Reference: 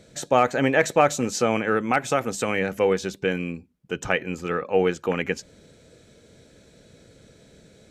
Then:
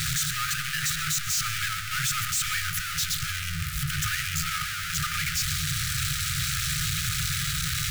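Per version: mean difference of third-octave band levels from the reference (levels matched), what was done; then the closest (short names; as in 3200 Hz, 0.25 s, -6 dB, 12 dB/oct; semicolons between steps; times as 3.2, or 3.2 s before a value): 25.0 dB: infinite clipping; FFT band-reject 170–1200 Hz; split-band echo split 370 Hz, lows 0.468 s, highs 0.126 s, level -15.5 dB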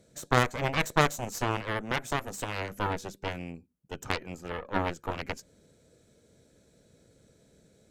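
4.5 dB: bell 2800 Hz -5.5 dB 2 oct; added harmonics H 3 -8 dB, 6 -21 dB, 7 -33 dB, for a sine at -6.5 dBFS; high shelf 8100 Hz +7 dB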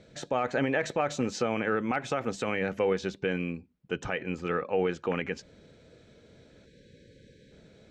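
3.0 dB: LPF 4400 Hz 12 dB/oct; spectral delete 6.66–7.52, 590–1500 Hz; limiter -14 dBFS, peak gain reduction 8 dB; gain -3 dB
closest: third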